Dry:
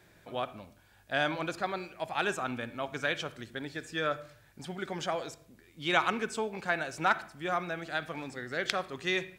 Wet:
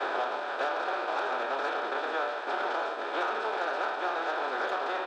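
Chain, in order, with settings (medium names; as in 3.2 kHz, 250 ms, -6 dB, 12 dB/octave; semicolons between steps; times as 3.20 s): spectral levelling over time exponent 0.2; tape spacing loss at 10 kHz 33 dB; on a send: early reflections 39 ms -8.5 dB, 58 ms -8 dB; on the sum: saturation -16.5 dBFS, distortion -18 dB; peaking EQ 2.1 kHz -10.5 dB 0.4 oct; expander -25 dBFS; time stretch by phase-locked vocoder 0.54×; Bessel high-pass 550 Hz, order 8; three bands compressed up and down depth 100%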